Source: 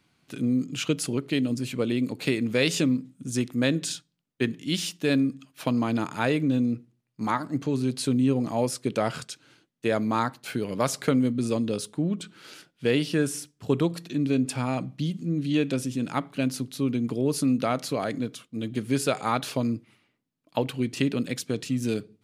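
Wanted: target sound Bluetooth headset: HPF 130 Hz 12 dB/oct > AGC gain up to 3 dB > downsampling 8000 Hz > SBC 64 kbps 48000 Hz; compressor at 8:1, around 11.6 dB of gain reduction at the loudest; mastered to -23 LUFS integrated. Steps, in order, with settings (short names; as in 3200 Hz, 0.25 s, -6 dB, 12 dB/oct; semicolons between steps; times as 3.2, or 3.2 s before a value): compressor 8:1, threshold -31 dBFS; HPF 130 Hz 12 dB/oct; AGC gain up to 3 dB; downsampling 8000 Hz; gain +13.5 dB; SBC 64 kbps 48000 Hz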